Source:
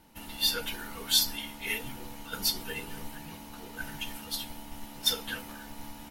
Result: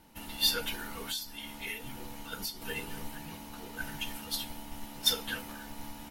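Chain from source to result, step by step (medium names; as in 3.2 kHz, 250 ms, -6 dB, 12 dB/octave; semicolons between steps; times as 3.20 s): 1.05–2.62 s: compression 5:1, threshold -36 dBFS, peak gain reduction 15.5 dB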